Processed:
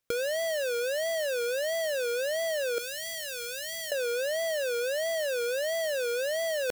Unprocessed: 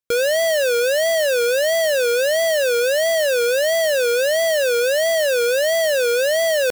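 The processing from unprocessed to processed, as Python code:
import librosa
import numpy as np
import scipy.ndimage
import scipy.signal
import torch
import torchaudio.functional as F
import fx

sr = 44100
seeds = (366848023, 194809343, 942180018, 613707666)

y = fx.halfwave_hold(x, sr)
y = fx.tone_stack(y, sr, knobs='6-0-2', at=(2.78, 3.92))
y = fx.over_compress(y, sr, threshold_db=-26.0, ratio=-1.0)
y = y * librosa.db_to_amplitude(-3.5)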